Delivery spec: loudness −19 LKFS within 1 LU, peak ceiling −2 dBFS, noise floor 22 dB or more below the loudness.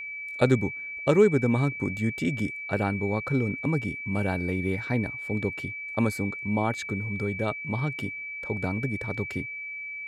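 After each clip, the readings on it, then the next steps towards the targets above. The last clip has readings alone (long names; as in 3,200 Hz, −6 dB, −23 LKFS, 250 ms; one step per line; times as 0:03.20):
interfering tone 2,300 Hz; level of the tone −34 dBFS; integrated loudness −28.0 LKFS; sample peak −8.0 dBFS; target loudness −19.0 LKFS
→ notch filter 2,300 Hz, Q 30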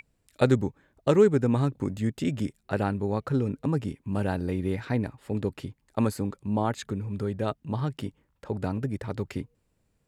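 interfering tone none found; integrated loudness −28.5 LKFS; sample peak −8.5 dBFS; target loudness −19.0 LKFS
→ level +9.5 dB
brickwall limiter −2 dBFS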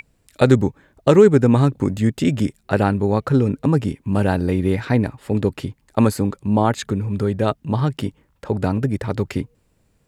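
integrated loudness −19.5 LKFS; sample peak −2.0 dBFS; background noise floor −64 dBFS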